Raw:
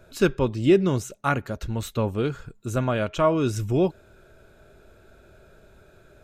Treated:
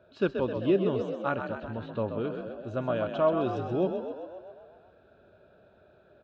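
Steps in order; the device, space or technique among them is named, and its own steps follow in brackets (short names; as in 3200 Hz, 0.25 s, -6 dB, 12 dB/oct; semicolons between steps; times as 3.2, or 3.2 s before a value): 1.54–2.31 LPF 3200 Hz 12 dB/oct; frequency-shifting delay pedal into a guitar cabinet (frequency-shifting echo 0.13 s, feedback 61%, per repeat +45 Hz, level -7.5 dB; speaker cabinet 99–3700 Hz, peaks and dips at 140 Hz -5 dB, 590 Hz +6 dB, 2100 Hz -10 dB); gain -7 dB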